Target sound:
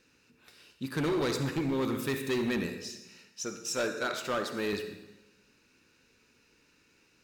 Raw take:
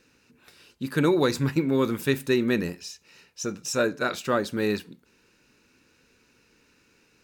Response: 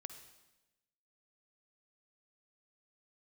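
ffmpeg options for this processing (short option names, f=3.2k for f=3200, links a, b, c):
-filter_complex "[0:a]asettb=1/sr,asplit=3[a][b][c];[a]atrim=end=2.664[d];[b]atrim=start=2.66:end=4.73,asetpts=PTS-STARTPTS,afade=t=in:d=0.004:c=qsin,afade=t=out:st=2.066:d=0.004:c=qsin,lowshelf=f=170:g=-11[e];[c]atrim=start=4.726[f];[d][e]acrossfade=d=0.004:c1=hsin:c2=qsin[g];[g][f]acrossfade=d=0.004:c1=qsin:c2=hsin[h];[1:a]atrim=start_sample=2205[i];[h][i]afir=irnorm=-1:irlink=0,asoftclip=type=hard:threshold=-26dB,equalizer=f=3.7k:t=o:w=2.1:g=2.5"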